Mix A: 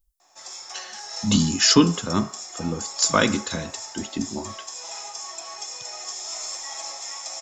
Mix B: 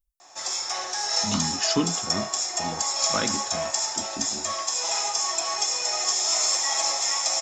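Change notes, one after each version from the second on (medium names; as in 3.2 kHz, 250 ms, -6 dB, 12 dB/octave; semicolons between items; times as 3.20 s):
speech -8.5 dB; background +9.5 dB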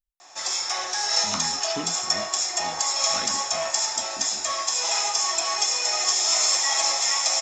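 speech -10.0 dB; master: add peaking EQ 2.6 kHz +4.5 dB 2.3 oct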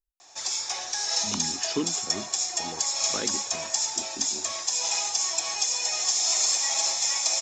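speech: add peaking EQ 380 Hz +11.5 dB 0.82 oct; reverb: off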